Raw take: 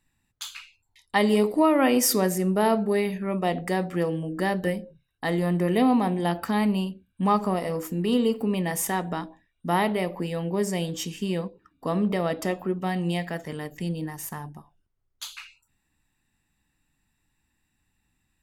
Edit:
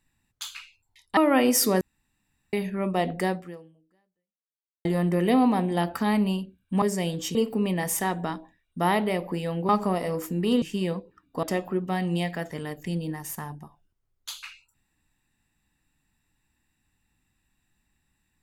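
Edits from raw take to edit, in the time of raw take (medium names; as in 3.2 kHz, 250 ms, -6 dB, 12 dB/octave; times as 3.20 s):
1.17–1.65 s: delete
2.29–3.01 s: room tone
3.77–5.33 s: fade out exponential
7.30–8.23 s: swap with 10.57–11.10 s
11.91–12.37 s: delete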